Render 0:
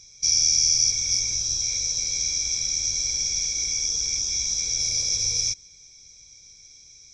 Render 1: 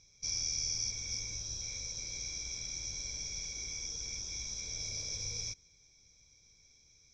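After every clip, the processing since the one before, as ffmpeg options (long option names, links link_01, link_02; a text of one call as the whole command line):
ffmpeg -i in.wav -af "aemphasis=mode=reproduction:type=75kf,volume=-6.5dB" out.wav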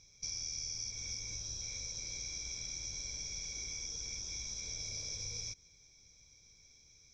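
ffmpeg -i in.wav -af "acompressor=threshold=-41dB:ratio=3,volume=1.5dB" out.wav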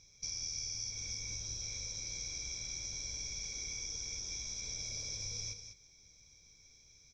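ffmpeg -i in.wav -af "aecho=1:1:197:0.355" out.wav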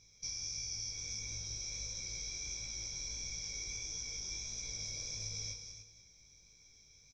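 ffmpeg -i in.wav -af "aecho=1:1:288:0.299,flanger=delay=17.5:depth=3.9:speed=1.5,volume=2dB" out.wav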